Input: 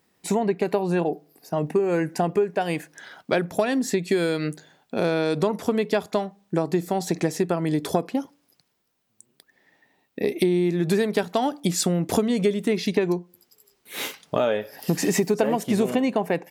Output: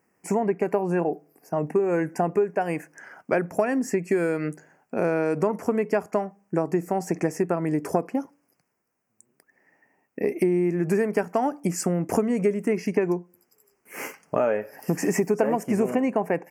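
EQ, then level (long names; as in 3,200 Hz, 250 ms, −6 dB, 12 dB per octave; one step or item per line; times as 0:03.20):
Butterworth band-reject 3,700 Hz, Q 1.2
low-shelf EQ 110 Hz −8 dB
high-shelf EQ 4,900 Hz −6 dB
0.0 dB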